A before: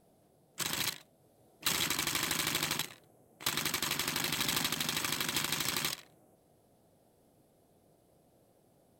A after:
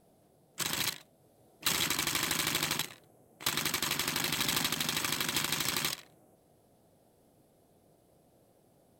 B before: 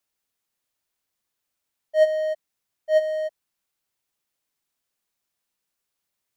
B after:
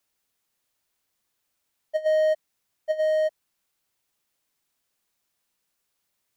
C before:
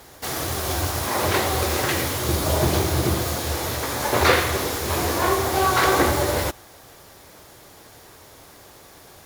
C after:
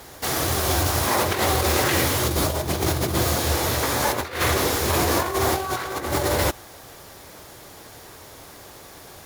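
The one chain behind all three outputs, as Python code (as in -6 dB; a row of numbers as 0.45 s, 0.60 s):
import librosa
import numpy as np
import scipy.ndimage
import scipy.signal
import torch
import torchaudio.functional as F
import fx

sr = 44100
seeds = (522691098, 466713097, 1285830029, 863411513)

y = fx.over_compress(x, sr, threshold_db=-23.0, ratio=-0.5)
y = F.gain(torch.from_numpy(y), 1.5).numpy()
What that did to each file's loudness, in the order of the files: +1.5 LU, -1.5 LU, 0.0 LU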